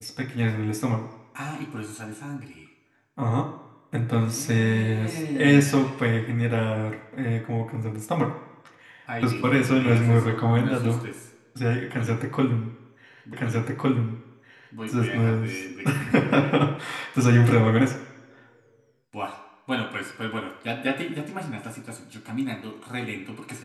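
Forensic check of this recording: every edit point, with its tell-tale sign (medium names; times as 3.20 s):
13.33 s: repeat of the last 1.46 s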